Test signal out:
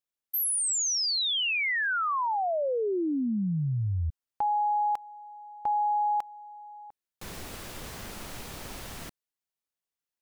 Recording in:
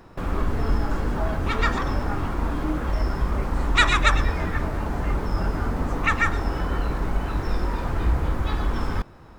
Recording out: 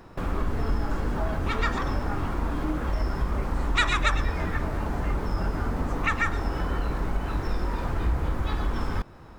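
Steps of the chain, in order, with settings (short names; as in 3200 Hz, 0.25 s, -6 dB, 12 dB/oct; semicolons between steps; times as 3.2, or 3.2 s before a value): compressor 1.5:1, threshold -27 dBFS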